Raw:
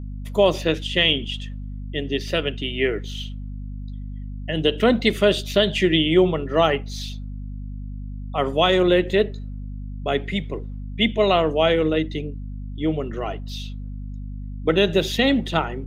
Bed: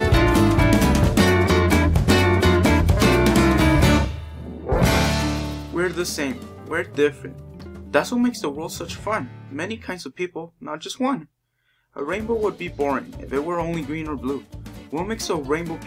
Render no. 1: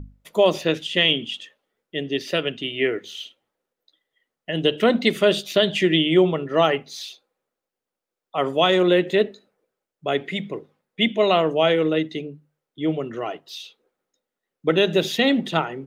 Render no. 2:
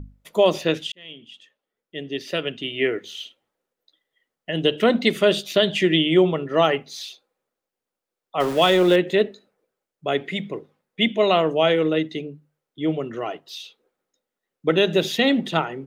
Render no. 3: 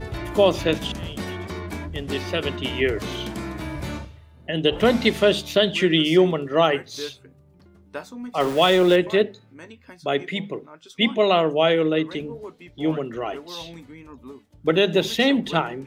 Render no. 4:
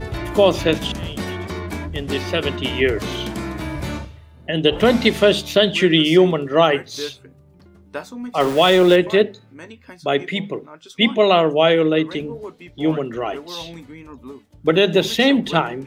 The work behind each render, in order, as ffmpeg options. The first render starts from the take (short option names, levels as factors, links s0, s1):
-af "bandreject=f=50:t=h:w=6,bandreject=f=100:t=h:w=6,bandreject=f=150:t=h:w=6,bandreject=f=200:t=h:w=6,bandreject=f=250:t=h:w=6"
-filter_complex "[0:a]asettb=1/sr,asplit=3[s0][s1][s2];[s0]atrim=end=8.404[s3];[s1]atrim=start=8.4:end=8.96,asetpts=PTS-STARTPTS,afade=t=in:d=0.004:c=qsin,afade=t=out:st=0.556:d=0.004:c=qsin,aeval=exprs='val(0)+0.5*0.0422*sgn(val(0))':c=same[s4];[s2]atrim=start=8.956[s5];[s3][s4]acrossfade=d=0.004:c1=hsin:c2=qsin[s6];[s6][s5]acrossfade=d=0.004:c1=qsin:c2=hsin,asplit=2[s7][s8];[s7]atrim=end=0.92,asetpts=PTS-STARTPTS,afade=t=out:st=0.916:d=0.004:c=hsin[s9];[s8]atrim=start=0.92,asetpts=PTS-STARTPTS,afade=t=in:d=1.93[s10];[s9][s10]concat=n=2:v=0:a=1"
-filter_complex "[1:a]volume=0.178[s0];[0:a][s0]amix=inputs=2:normalize=0"
-af "volume=1.58,alimiter=limit=0.708:level=0:latency=1"